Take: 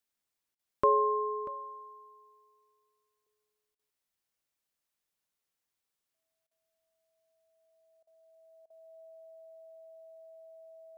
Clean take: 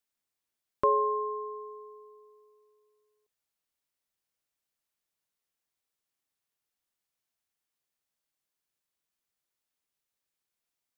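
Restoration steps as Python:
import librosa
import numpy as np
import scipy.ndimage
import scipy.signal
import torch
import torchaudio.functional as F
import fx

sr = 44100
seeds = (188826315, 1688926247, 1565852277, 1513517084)

y = fx.notch(x, sr, hz=650.0, q=30.0)
y = fx.fix_interpolate(y, sr, at_s=(0.55, 3.75, 6.47, 8.03, 8.66), length_ms=40.0)
y = fx.fix_echo_inverse(y, sr, delay_ms=638, level_db=-17.0)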